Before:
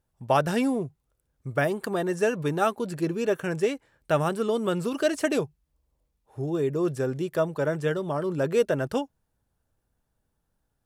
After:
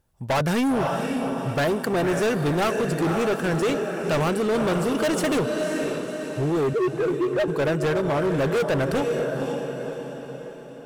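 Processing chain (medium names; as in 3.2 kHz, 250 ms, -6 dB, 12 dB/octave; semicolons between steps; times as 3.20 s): 6.73–7.48 s: formants replaced by sine waves; echo that smears into a reverb 524 ms, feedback 51%, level -8 dB; hard clipper -26.5 dBFS, distortion -7 dB; trim +7 dB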